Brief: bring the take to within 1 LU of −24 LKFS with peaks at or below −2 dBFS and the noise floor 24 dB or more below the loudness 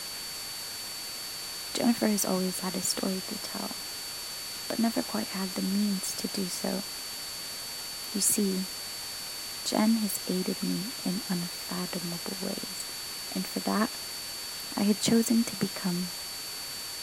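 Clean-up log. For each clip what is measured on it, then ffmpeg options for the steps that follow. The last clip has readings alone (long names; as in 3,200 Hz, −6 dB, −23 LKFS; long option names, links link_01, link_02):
interfering tone 4,500 Hz; level of the tone −39 dBFS; background noise floor −38 dBFS; target noise floor −55 dBFS; integrated loudness −30.5 LKFS; sample peak −12.0 dBFS; target loudness −24.0 LKFS
→ -af "bandreject=frequency=4500:width=30"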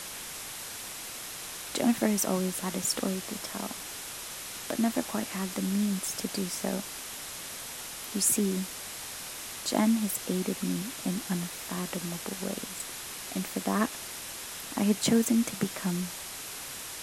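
interfering tone none found; background noise floor −41 dBFS; target noise floor −55 dBFS
→ -af "afftdn=noise_reduction=14:noise_floor=-41"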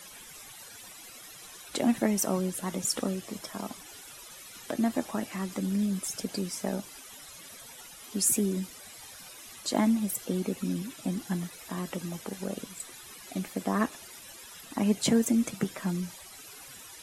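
background noise floor −48 dBFS; target noise floor −55 dBFS
→ -af "afftdn=noise_reduction=7:noise_floor=-48"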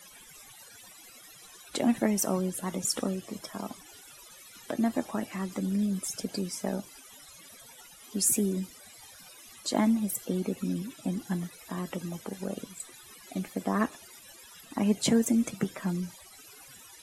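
background noise floor −52 dBFS; target noise floor −55 dBFS
→ -af "afftdn=noise_reduction=6:noise_floor=-52"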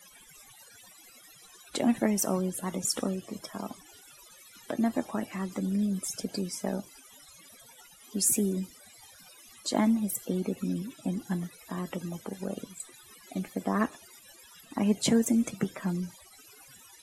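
background noise floor −55 dBFS; integrated loudness −31.0 LKFS; sample peak −12.0 dBFS; target loudness −24.0 LKFS
→ -af "volume=7dB"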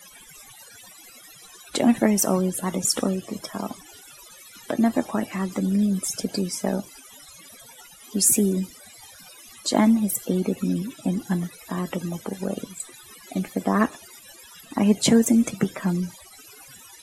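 integrated loudness −24.0 LKFS; sample peak −5.0 dBFS; background noise floor −48 dBFS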